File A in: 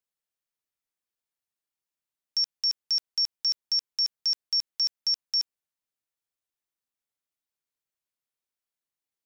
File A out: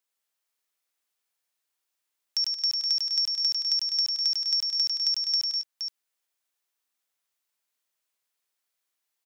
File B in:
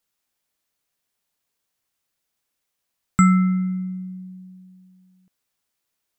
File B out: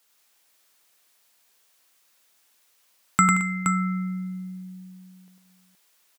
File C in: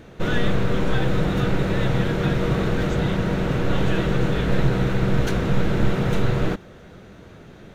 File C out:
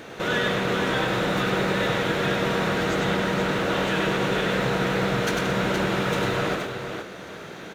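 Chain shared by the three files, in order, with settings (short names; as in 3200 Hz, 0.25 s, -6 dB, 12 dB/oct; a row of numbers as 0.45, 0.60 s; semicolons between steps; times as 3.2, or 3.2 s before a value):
HPF 620 Hz 6 dB/oct; compressor 1.5:1, threshold -45 dBFS; tapped delay 99/176/220/471 ms -3.5/-13.5/-15/-6.5 dB; match loudness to -24 LUFS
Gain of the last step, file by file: +6.5, +12.0, +9.5 dB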